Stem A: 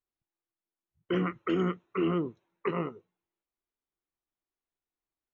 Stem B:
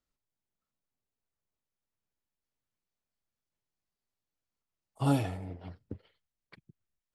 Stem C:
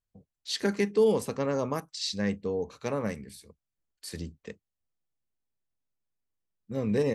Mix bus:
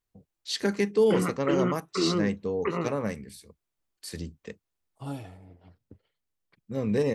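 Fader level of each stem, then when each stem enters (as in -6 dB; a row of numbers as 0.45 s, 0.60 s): +1.5 dB, -9.5 dB, +1.0 dB; 0.00 s, 0.00 s, 0.00 s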